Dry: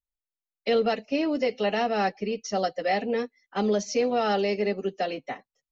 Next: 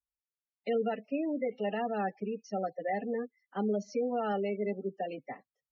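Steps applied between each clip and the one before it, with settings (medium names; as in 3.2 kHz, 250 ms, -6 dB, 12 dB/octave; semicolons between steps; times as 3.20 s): high-pass 45 Hz; spectral gate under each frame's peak -20 dB strong; tone controls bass +4 dB, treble -12 dB; trim -7.5 dB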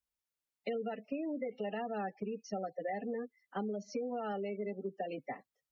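compression, threshold -37 dBFS, peak gain reduction 10.5 dB; trim +2 dB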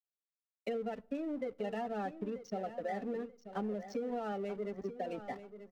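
hysteresis with a dead band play -46 dBFS; feedback delay 935 ms, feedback 26%, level -12 dB; on a send at -22.5 dB: reverberation RT60 0.70 s, pre-delay 4 ms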